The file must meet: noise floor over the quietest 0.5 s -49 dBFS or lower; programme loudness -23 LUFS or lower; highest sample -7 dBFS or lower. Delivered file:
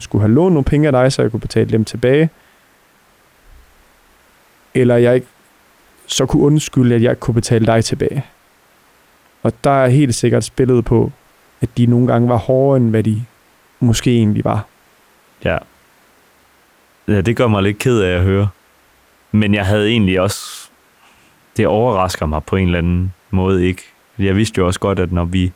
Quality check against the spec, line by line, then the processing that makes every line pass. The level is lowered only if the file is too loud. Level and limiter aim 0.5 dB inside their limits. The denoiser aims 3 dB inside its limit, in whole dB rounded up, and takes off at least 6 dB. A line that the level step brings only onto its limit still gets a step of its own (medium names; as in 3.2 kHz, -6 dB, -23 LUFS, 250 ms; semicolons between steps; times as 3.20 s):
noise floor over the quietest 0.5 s -52 dBFS: pass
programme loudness -15.0 LUFS: fail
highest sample -3.5 dBFS: fail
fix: trim -8.5 dB